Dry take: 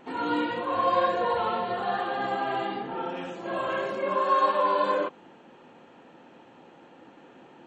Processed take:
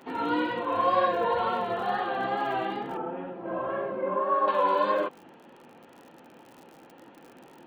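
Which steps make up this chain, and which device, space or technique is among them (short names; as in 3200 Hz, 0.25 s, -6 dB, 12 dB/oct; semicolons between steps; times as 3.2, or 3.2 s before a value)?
lo-fi chain (LPF 4200 Hz 12 dB/oct; wow and flutter; crackle 61/s -41 dBFS); 2.97–4.48 Bessel low-pass 1100 Hz, order 2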